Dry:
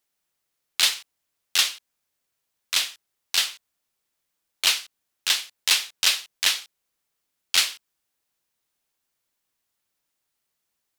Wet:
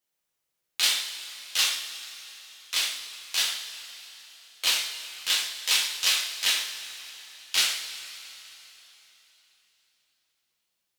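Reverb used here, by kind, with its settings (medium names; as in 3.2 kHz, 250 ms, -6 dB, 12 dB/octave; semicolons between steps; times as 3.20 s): two-slope reverb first 0.56 s, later 3.7 s, from -15 dB, DRR -4 dB; trim -7.5 dB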